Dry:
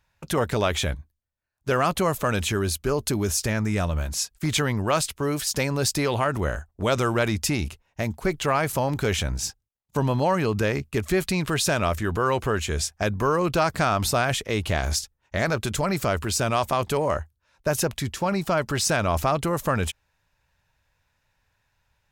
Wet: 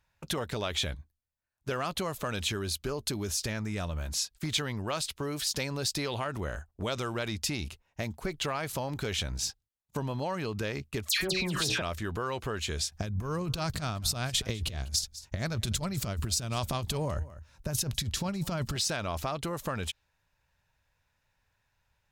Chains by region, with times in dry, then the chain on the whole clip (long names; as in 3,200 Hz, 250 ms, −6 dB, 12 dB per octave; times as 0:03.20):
0:11.09–0:11.82: hum removal 62.22 Hz, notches 13 + all-pass dispersion lows, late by 111 ms, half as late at 2,000 Hz + envelope flattener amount 100%
0:12.92–0:18.76: bass and treble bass +13 dB, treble +6 dB + compressor whose output falls as the input rises −20 dBFS, ratio −0.5 + single-tap delay 199 ms −21 dB
whole clip: downward compressor 3 to 1, threshold −27 dBFS; dynamic equaliser 3,900 Hz, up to +8 dB, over −49 dBFS, Q 1.3; level −4.5 dB